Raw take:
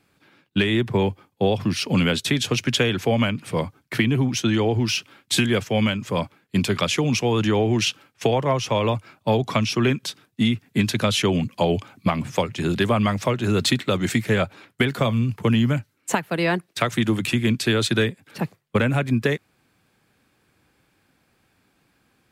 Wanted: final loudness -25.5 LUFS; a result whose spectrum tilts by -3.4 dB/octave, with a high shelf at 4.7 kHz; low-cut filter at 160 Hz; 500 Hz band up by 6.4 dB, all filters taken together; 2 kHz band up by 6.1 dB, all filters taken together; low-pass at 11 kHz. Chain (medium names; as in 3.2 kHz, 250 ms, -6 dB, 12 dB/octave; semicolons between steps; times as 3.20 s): high-pass 160 Hz; low-pass 11 kHz; peaking EQ 500 Hz +7.5 dB; peaking EQ 2 kHz +8 dB; treble shelf 4.7 kHz -3.5 dB; trim -6 dB